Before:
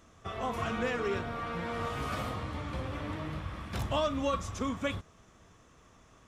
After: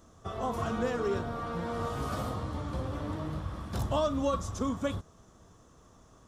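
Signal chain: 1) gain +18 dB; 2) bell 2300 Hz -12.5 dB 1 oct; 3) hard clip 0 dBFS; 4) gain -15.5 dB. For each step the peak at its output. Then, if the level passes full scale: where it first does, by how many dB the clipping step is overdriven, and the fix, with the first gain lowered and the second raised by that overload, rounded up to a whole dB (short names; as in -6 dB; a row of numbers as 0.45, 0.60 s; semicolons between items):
-0.5, -2.0, -2.0, -17.5 dBFS; no overload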